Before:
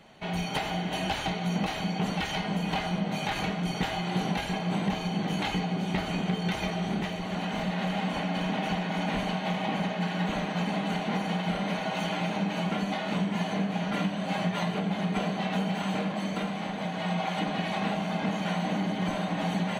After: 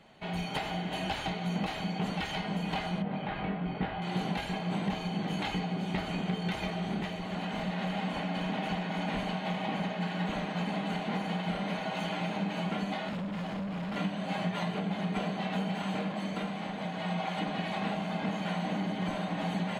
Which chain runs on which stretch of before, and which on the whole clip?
3.02–4.02 air absorption 440 m + doubler 21 ms -5 dB
13.09–13.96 tone controls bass +4 dB, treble -7 dB + overloaded stage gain 30 dB
whole clip: high shelf 10000 Hz -5 dB; notch 5900 Hz, Q 11; gain -3.5 dB

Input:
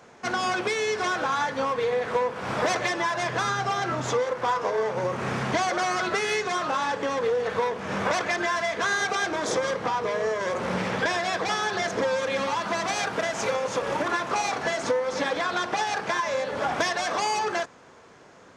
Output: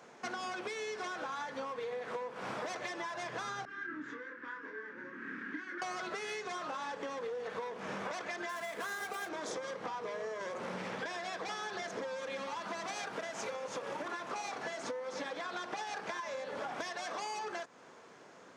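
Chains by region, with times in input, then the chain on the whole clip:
3.65–5.82 double band-pass 690 Hz, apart 2.5 oct + doubler 26 ms -4 dB
8.49–9.29 median filter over 9 samples + high shelf 5100 Hz +7.5 dB
whole clip: HPF 170 Hz 12 dB/oct; compressor, threshold -33 dBFS; gain -4.5 dB

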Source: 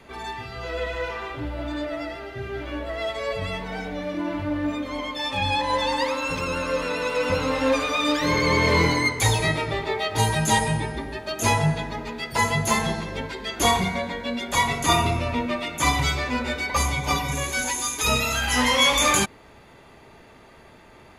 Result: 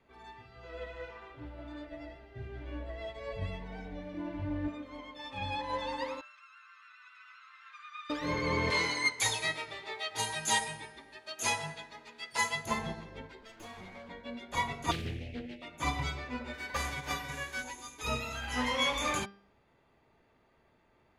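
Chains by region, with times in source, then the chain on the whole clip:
1.87–4.68 low shelf 130 Hz +10.5 dB + notch 1300 Hz, Q 6.6
6.21–8.1 Chebyshev band-pass 1200–9400 Hz, order 5 + tilt -4 dB/oct
8.7–12.66 LPF 11000 Hz 24 dB/oct + tilt +4 dB/oct
13.41–14.09 minimum comb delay 8.9 ms + compressor, threshold -27 dBFS
14.91–15.62 Chebyshev band-stop 510–2200 Hz, order 3 + Doppler distortion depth 0.56 ms
16.53–17.61 spectral whitening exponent 0.6 + bell 1700 Hz +8 dB 0.37 oct
whole clip: LPF 3400 Hz 6 dB/oct; de-hum 198.7 Hz, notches 29; upward expander 1.5:1, over -37 dBFS; gain -8 dB

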